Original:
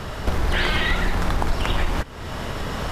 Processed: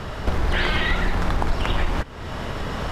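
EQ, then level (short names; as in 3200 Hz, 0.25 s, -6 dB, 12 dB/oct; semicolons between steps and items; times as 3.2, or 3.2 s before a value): high shelf 7000 Hz -9 dB; 0.0 dB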